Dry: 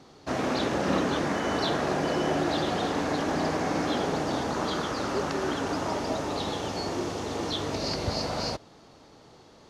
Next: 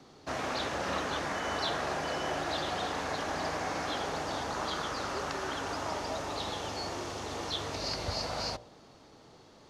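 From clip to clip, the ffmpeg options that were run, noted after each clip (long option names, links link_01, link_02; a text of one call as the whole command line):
ffmpeg -i in.wav -filter_complex "[0:a]bandreject=frequency=59.42:width_type=h:width=4,bandreject=frequency=118.84:width_type=h:width=4,bandreject=frequency=178.26:width_type=h:width=4,bandreject=frequency=237.68:width_type=h:width=4,bandreject=frequency=297.1:width_type=h:width=4,bandreject=frequency=356.52:width_type=h:width=4,bandreject=frequency=415.94:width_type=h:width=4,bandreject=frequency=475.36:width_type=h:width=4,bandreject=frequency=534.78:width_type=h:width=4,bandreject=frequency=594.2:width_type=h:width=4,bandreject=frequency=653.62:width_type=h:width=4,bandreject=frequency=713.04:width_type=h:width=4,bandreject=frequency=772.46:width_type=h:width=4,bandreject=frequency=831.88:width_type=h:width=4,bandreject=frequency=891.3:width_type=h:width=4,bandreject=frequency=950.72:width_type=h:width=4,bandreject=frequency=1010.14:width_type=h:width=4,acrossover=split=100|550|5200[link_01][link_02][link_03][link_04];[link_02]acompressor=threshold=-42dB:ratio=4[link_05];[link_01][link_05][link_03][link_04]amix=inputs=4:normalize=0,volume=-2.5dB" out.wav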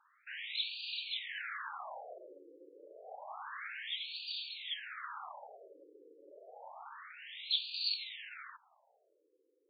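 ffmpeg -i in.wav -af "aderivative,afftfilt=real='re*between(b*sr/1024,370*pow(3400/370,0.5+0.5*sin(2*PI*0.29*pts/sr))/1.41,370*pow(3400/370,0.5+0.5*sin(2*PI*0.29*pts/sr))*1.41)':imag='im*between(b*sr/1024,370*pow(3400/370,0.5+0.5*sin(2*PI*0.29*pts/sr))/1.41,370*pow(3400/370,0.5+0.5*sin(2*PI*0.29*pts/sr))*1.41)':win_size=1024:overlap=0.75,volume=10dB" out.wav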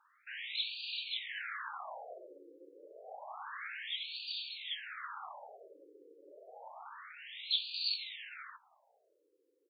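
ffmpeg -i in.wav -filter_complex "[0:a]asplit=2[link_01][link_02];[link_02]adelay=17,volume=-11dB[link_03];[link_01][link_03]amix=inputs=2:normalize=0" out.wav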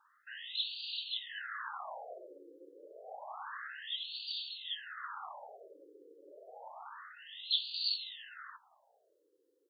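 ffmpeg -i in.wav -af "asuperstop=centerf=2300:order=4:qfactor=2.6,volume=1dB" out.wav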